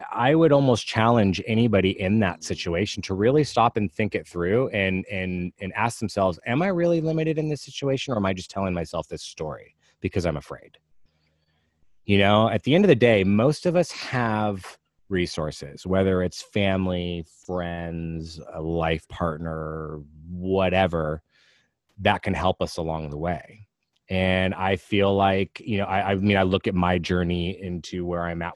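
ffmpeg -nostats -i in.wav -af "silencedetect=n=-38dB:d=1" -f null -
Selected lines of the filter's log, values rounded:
silence_start: 10.75
silence_end: 12.08 | silence_duration: 1.34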